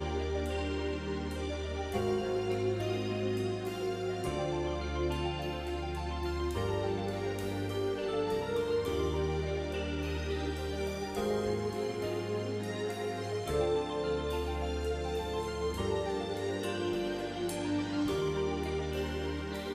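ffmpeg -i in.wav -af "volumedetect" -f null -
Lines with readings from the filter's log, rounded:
mean_volume: -33.7 dB
max_volume: -18.8 dB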